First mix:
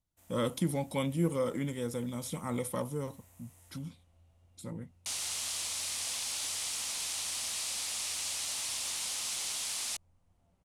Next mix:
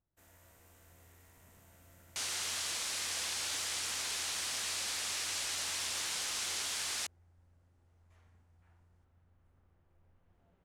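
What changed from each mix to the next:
speech: muted; second sound: entry -2.90 s; master: add fifteen-band graphic EQ 400 Hz +7 dB, 1.6 kHz +8 dB, 10 kHz -5 dB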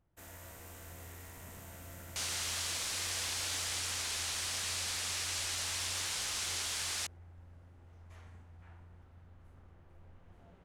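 first sound +11.5 dB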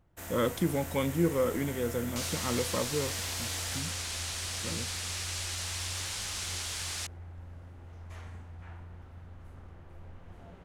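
speech: unmuted; first sound +9.0 dB

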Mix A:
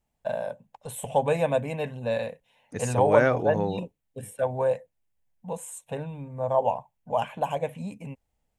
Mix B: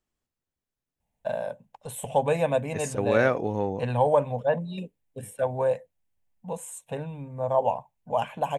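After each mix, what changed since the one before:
first voice: entry +1.00 s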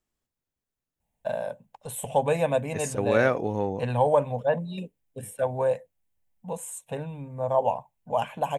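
master: add treble shelf 9.8 kHz +5.5 dB

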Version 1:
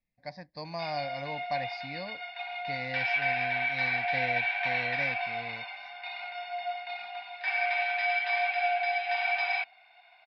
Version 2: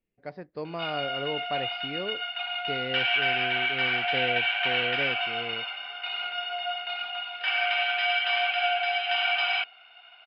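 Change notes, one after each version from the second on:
speech: add distance through air 300 m; master: remove static phaser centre 2 kHz, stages 8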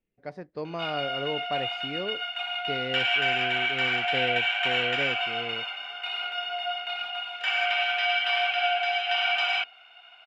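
master: remove elliptic low-pass 4.9 kHz, stop band 50 dB

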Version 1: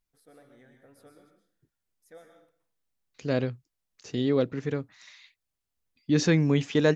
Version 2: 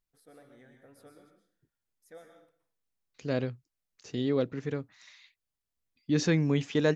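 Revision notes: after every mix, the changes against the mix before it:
second voice -3.5 dB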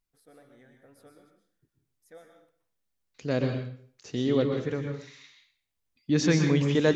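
second voice: send on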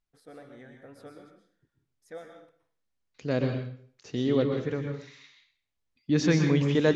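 first voice +8.0 dB; master: add distance through air 58 m

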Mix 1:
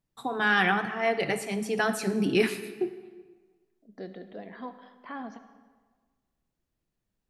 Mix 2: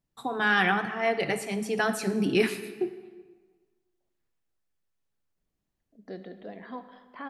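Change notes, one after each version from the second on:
second voice: entry +2.10 s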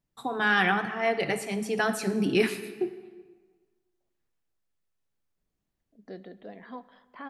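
second voice: send -9.0 dB

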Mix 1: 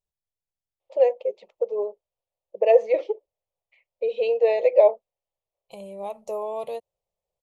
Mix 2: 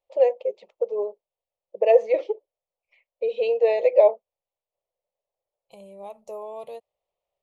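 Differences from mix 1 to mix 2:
first voice: entry -0.80 s; second voice -6.0 dB

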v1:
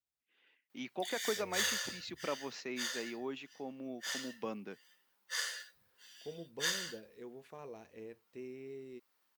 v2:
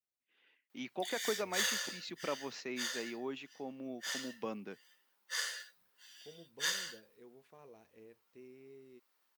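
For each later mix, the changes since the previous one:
second voice -8.5 dB; background: add high-pass 220 Hz 12 dB/octave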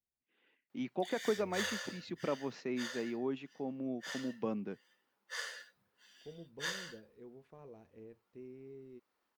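master: add tilt EQ -3 dB/octave

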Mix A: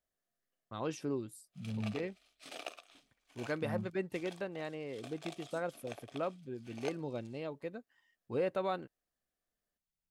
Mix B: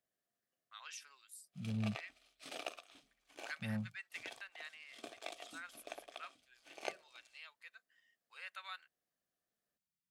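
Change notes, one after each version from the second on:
first voice: add high-pass 1.5 kHz 24 dB/octave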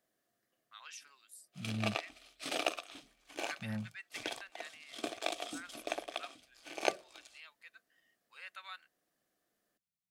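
background +10.5 dB; master: add peaking EQ 320 Hz +5 dB 0.25 oct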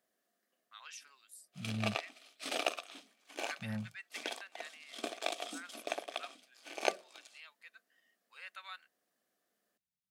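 background: add brick-wall FIR high-pass 170 Hz; master: add peaking EQ 320 Hz -5 dB 0.25 oct

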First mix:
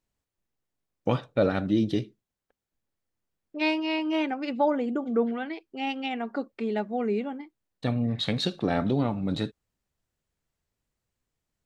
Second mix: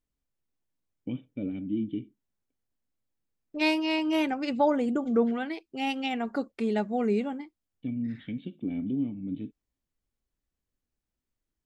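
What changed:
first voice: add cascade formant filter i; second voice: remove band-pass 200–4200 Hz

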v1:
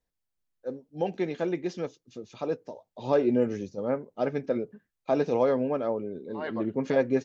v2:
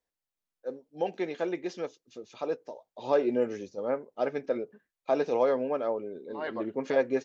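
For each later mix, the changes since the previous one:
first voice: add tone controls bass -13 dB, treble -1 dB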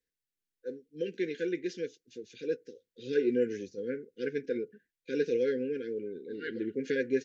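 master: add brick-wall FIR band-stop 520–1400 Hz

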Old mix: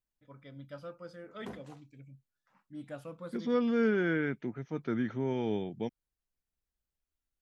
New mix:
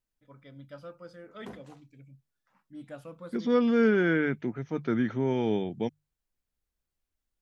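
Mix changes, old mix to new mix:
second voice +5.0 dB; master: add hum notches 50/100/150 Hz

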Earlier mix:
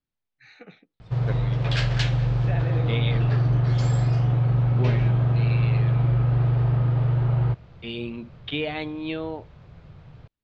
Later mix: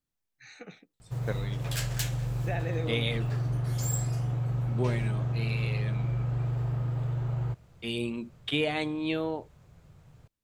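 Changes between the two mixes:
background -9.0 dB; master: remove low-pass 4.4 kHz 24 dB/octave

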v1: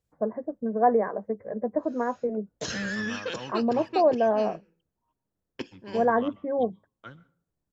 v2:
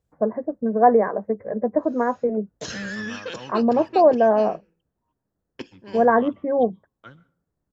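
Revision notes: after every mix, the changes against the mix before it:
first voice +6.0 dB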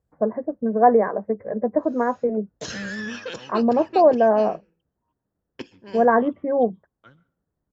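second voice -6.5 dB

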